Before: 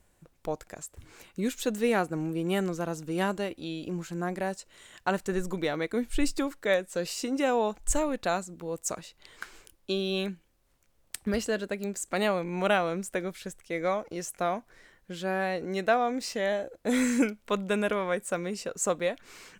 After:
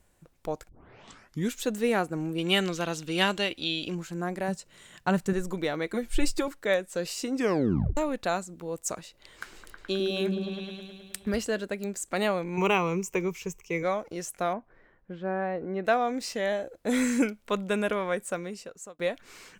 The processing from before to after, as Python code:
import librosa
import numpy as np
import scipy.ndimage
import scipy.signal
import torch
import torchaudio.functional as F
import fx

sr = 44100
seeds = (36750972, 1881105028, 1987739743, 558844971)

y = fx.peak_eq(x, sr, hz=3300.0, db=15.0, octaves=1.6, at=(2.38, 3.95))
y = fx.peak_eq(y, sr, hz=160.0, db=11.5, octaves=0.77, at=(4.48, 5.33))
y = fx.comb(y, sr, ms=5.7, depth=0.7, at=(5.86, 6.48))
y = fx.echo_opening(y, sr, ms=106, hz=400, octaves=1, feedback_pct=70, wet_db=0, at=(9.03, 11.37))
y = fx.ripple_eq(y, sr, per_octave=0.76, db=15, at=(12.57, 13.83))
y = fx.lowpass(y, sr, hz=1400.0, slope=12, at=(14.53, 15.85))
y = fx.edit(y, sr, fx.tape_start(start_s=0.69, length_s=0.84),
    fx.tape_stop(start_s=7.34, length_s=0.63),
    fx.fade_out_span(start_s=18.22, length_s=0.77), tone=tone)